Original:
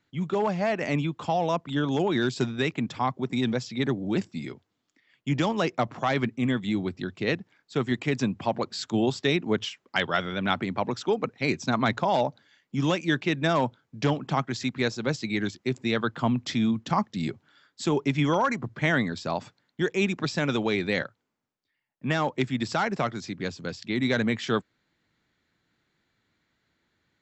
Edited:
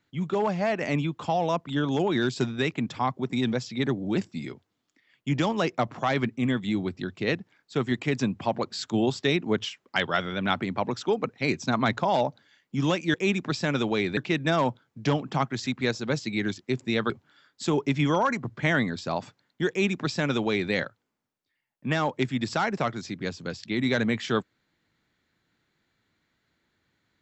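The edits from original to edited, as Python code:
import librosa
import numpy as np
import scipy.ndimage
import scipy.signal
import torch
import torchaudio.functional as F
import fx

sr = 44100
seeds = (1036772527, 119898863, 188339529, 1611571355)

y = fx.edit(x, sr, fx.cut(start_s=16.07, length_s=1.22),
    fx.duplicate(start_s=19.88, length_s=1.03, to_s=13.14), tone=tone)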